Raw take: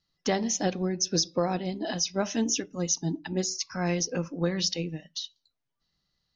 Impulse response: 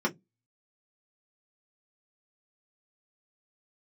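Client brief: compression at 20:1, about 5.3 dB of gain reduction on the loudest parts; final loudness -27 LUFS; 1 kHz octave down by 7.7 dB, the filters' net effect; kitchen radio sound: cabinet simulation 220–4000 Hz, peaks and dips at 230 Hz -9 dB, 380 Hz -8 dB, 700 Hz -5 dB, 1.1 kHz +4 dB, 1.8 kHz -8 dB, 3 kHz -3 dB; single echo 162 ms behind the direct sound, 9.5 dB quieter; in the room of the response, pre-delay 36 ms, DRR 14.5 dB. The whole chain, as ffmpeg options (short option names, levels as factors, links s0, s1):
-filter_complex "[0:a]equalizer=f=1000:t=o:g=-8,acompressor=threshold=0.0447:ratio=20,aecho=1:1:162:0.335,asplit=2[s0][s1];[1:a]atrim=start_sample=2205,adelay=36[s2];[s1][s2]afir=irnorm=-1:irlink=0,volume=0.0631[s3];[s0][s3]amix=inputs=2:normalize=0,highpass=220,equalizer=f=230:t=q:w=4:g=-9,equalizer=f=380:t=q:w=4:g=-8,equalizer=f=700:t=q:w=4:g=-5,equalizer=f=1100:t=q:w=4:g=4,equalizer=f=1800:t=q:w=4:g=-8,equalizer=f=3000:t=q:w=4:g=-3,lowpass=f=4000:w=0.5412,lowpass=f=4000:w=1.3066,volume=4.22"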